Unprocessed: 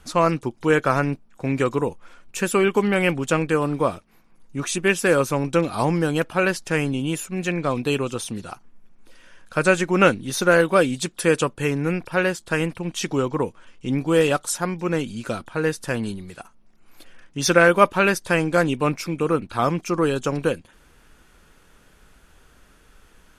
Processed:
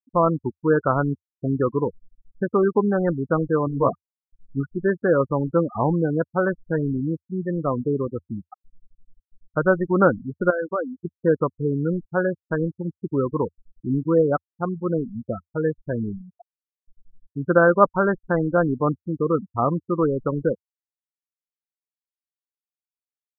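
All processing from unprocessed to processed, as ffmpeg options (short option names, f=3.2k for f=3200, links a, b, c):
-filter_complex "[0:a]asettb=1/sr,asplit=3[a][b][c];[a]atrim=end=3.654[d];[b]atrim=start=3.65:end=4.7,asetpts=PTS-STARTPTS,afade=t=in:d=0.004:c=qsin,afade=t=out:st=1.046:d=0.004:c=qsin,bandreject=f=50:t=h:w=6,bandreject=f=100:t=h:w=6,bandreject=f=150:t=h:w=6,bandreject=f=200:t=h:w=6,bandreject=f=250:t=h:w=6,bandreject=f=300:t=h:w=6,bandreject=f=350:t=h:w=6,bandreject=f=400:t=h:w=6,bandreject=f=450:t=h:w=6,asplit=2[e][f];[f]adelay=15,volume=-3.5dB[g];[e][g]amix=inputs=2:normalize=0,atrim=end_sample=46305[h];[c]atrim=start=4.696[i];[d][h]acrossfade=d=0.004:c1=hsin:c2=qsin[j];[j][i]acrossfade=d=0.004:c1=qsin:c2=hsin,asettb=1/sr,asplit=3[k][l][m];[k]atrim=end=10.504[n];[l]atrim=start=10.5:end=11.05,asetpts=PTS-STARTPTS,afade=t=in:d=0.004:c=qsin,afade=t=out:st=0.546:d=0.004:c=qsin,lowshelf=f=310:g=-11.5,acompressor=threshold=-21dB:ratio=2.5:attack=3.2:release=140:knee=1:detection=peak[o];[m]atrim=start=11.046[p];[n][o]acrossfade=d=0.004:c1=hsin:c2=qsin[q];[q][p]acrossfade=d=0.004:c1=qsin:c2=hsin,lowpass=f=1.5k:w=0.5412,lowpass=f=1.5k:w=1.3066,afftfilt=real='re*gte(hypot(re,im),0.126)':imag='im*gte(hypot(re,im),0.126)':win_size=1024:overlap=0.75,equalizer=f=85:w=2.5:g=5.5"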